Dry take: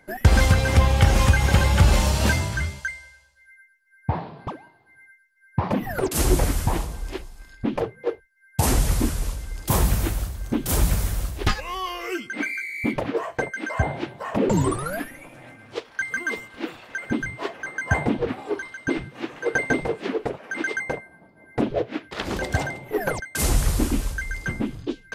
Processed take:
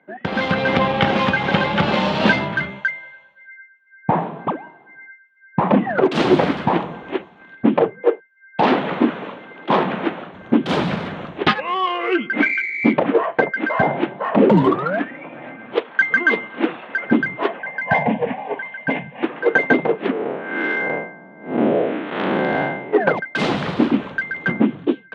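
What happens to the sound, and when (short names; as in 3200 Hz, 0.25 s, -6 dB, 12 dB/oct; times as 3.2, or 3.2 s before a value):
8–10.34 three-band isolator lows -17 dB, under 200 Hz, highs -21 dB, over 5300 Hz
17.59–19.23 fixed phaser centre 1300 Hz, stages 6
20.11–22.93 time blur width 0.166 s
whole clip: Wiener smoothing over 9 samples; Chebyshev band-pass 180–3600 Hz, order 3; AGC gain up to 14.5 dB; gain -1 dB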